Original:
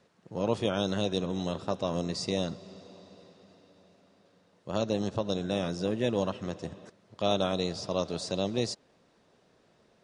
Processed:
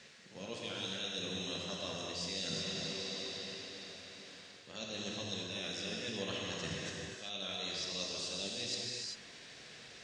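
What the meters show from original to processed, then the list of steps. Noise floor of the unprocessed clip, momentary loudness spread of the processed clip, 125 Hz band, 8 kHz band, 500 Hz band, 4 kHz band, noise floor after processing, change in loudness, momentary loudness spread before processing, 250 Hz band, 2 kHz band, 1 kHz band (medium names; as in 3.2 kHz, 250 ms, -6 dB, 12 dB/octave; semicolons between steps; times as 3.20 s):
-66 dBFS, 12 LU, -12.0 dB, +1.5 dB, -13.5 dB, +0.5 dB, -55 dBFS, -8.0 dB, 13 LU, -13.0 dB, 0.0 dB, -12.5 dB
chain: high-order bell 3.7 kHz +15.5 dB 2.7 oct; reverse; compression 10:1, threshold -41 dBFS, peak gain reduction 25.5 dB; reverse; gated-style reverb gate 420 ms flat, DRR -3.5 dB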